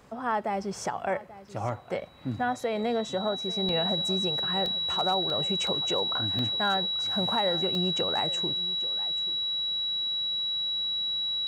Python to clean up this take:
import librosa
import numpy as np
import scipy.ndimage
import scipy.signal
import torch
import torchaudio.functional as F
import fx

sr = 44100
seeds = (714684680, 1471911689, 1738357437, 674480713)

y = fx.fix_declip(x, sr, threshold_db=-17.5)
y = fx.notch(y, sr, hz=3900.0, q=30.0)
y = fx.fix_interpolate(y, sr, at_s=(1.48, 2.6, 3.69, 4.66, 5.3, 5.67, 6.39, 7.75), length_ms=1.6)
y = fx.fix_echo_inverse(y, sr, delay_ms=836, level_db=-17.5)